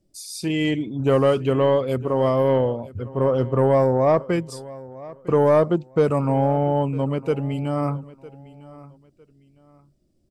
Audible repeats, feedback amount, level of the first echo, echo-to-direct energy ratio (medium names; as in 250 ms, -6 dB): 2, 28%, -19.5 dB, -19.0 dB